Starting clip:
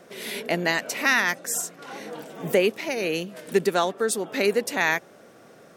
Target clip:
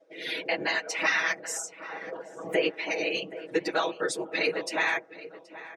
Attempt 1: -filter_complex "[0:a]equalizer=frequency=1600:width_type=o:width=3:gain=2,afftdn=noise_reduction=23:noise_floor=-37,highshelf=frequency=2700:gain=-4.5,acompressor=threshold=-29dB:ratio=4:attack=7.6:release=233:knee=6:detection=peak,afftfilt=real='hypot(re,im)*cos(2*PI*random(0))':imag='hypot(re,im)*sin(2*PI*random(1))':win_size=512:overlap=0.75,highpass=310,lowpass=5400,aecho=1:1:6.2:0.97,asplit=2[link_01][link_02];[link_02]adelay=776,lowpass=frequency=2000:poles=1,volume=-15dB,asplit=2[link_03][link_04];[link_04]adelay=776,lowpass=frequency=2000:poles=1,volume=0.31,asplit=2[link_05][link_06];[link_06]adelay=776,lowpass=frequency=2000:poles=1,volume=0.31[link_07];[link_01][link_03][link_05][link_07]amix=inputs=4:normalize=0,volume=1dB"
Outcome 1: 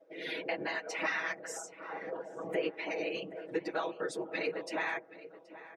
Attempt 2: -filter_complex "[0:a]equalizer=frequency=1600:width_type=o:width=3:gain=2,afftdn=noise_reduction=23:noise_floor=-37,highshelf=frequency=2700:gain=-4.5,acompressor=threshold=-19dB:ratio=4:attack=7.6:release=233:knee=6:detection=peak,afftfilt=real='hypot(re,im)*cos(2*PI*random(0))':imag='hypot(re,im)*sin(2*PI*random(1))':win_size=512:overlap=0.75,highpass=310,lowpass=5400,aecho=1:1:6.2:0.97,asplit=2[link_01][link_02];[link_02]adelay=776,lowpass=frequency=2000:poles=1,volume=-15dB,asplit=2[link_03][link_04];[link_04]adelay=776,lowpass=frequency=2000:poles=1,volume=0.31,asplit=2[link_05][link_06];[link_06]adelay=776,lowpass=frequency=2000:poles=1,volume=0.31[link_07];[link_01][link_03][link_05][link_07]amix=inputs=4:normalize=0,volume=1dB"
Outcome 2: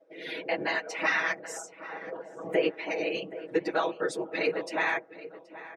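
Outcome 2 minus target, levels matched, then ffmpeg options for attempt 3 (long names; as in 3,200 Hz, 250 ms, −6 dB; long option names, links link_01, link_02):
4,000 Hz band −4.0 dB
-filter_complex "[0:a]equalizer=frequency=1600:width_type=o:width=3:gain=2,afftdn=noise_reduction=23:noise_floor=-37,highshelf=frequency=2700:gain=7,acompressor=threshold=-19dB:ratio=4:attack=7.6:release=233:knee=6:detection=peak,afftfilt=real='hypot(re,im)*cos(2*PI*random(0))':imag='hypot(re,im)*sin(2*PI*random(1))':win_size=512:overlap=0.75,highpass=310,lowpass=5400,aecho=1:1:6.2:0.97,asplit=2[link_01][link_02];[link_02]adelay=776,lowpass=frequency=2000:poles=1,volume=-15dB,asplit=2[link_03][link_04];[link_04]adelay=776,lowpass=frequency=2000:poles=1,volume=0.31,asplit=2[link_05][link_06];[link_06]adelay=776,lowpass=frequency=2000:poles=1,volume=0.31[link_07];[link_01][link_03][link_05][link_07]amix=inputs=4:normalize=0,volume=1dB"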